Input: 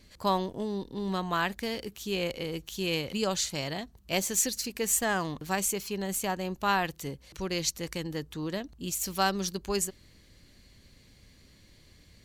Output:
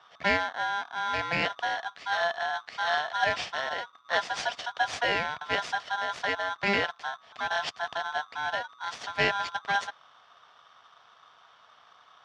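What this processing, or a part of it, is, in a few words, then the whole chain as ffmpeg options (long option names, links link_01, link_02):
ring modulator pedal into a guitar cabinet: -af "aeval=exprs='val(0)*sgn(sin(2*PI*1200*n/s))':channel_layout=same,highpass=87,equalizer=frequency=210:width_type=q:width=4:gain=-3,equalizer=frequency=340:width_type=q:width=4:gain=-5,equalizer=frequency=710:width_type=q:width=4:gain=8,equalizer=frequency=1200:width_type=q:width=4:gain=-3,equalizer=frequency=1700:width_type=q:width=4:gain=4,equalizer=frequency=4000:width_type=q:width=4:gain=-3,lowpass=frequency=4300:width=0.5412,lowpass=frequency=4300:width=1.3066,volume=1dB"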